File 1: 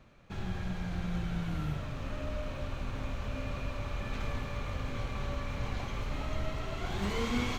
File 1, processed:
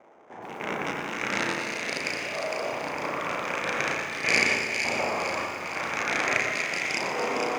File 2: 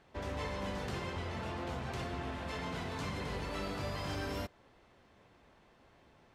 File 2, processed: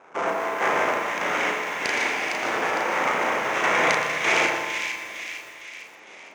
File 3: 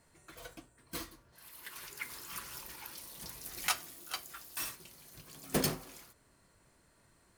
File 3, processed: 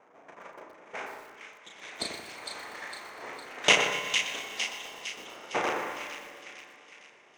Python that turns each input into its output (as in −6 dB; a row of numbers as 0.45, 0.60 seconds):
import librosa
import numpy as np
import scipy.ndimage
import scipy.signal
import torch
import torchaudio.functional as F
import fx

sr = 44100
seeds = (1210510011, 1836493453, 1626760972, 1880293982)

y = fx.rattle_buzz(x, sr, strikes_db=-33.0, level_db=-21.0)
y = fx.env_lowpass(y, sr, base_hz=830.0, full_db=-29.5)
y = fx.peak_eq(y, sr, hz=1100.0, db=-7.5, octaves=1.2)
y = fx.filter_lfo_lowpass(y, sr, shape='saw_up', hz=0.43, low_hz=740.0, high_hz=2500.0, q=3.5)
y = np.abs(y)
y = fx.tremolo_random(y, sr, seeds[0], hz=3.3, depth_pct=75)
y = fx.cabinet(y, sr, low_hz=390.0, low_slope=12, high_hz=9800.0, hz=(2200.0, 4300.0, 6300.0), db=(7, -8, 9))
y = fx.doubler(y, sr, ms=35.0, db=-4.0)
y = fx.echo_split(y, sr, split_hz=1900.0, low_ms=88, high_ms=457, feedback_pct=52, wet_db=-5.5)
y = fx.rev_schroeder(y, sr, rt60_s=3.4, comb_ms=30, drr_db=11.0)
y = fx.echo_crushed(y, sr, ms=121, feedback_pct=55, bits=10, wet_db=-11.5)
y = y * 10.0 ** (-6 / 20.0) / np.max(np.abs(y))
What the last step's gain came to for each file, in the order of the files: +13.0, +20.5, +17.0 decibels